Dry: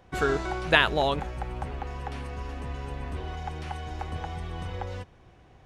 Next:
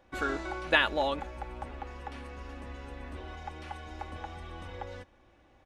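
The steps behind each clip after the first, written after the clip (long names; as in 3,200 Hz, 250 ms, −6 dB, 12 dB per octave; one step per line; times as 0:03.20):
bass and treble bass −5 dB, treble −3 dB
comb filter 3.5 ms, depth 53%
level −5 dB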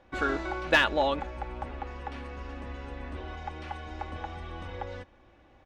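high-frequency loss of the air 73 metres
in parallel at −6 dB: wave folding −17 dBFS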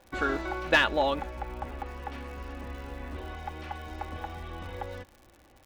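surface crackle 160 per second −43 dBFS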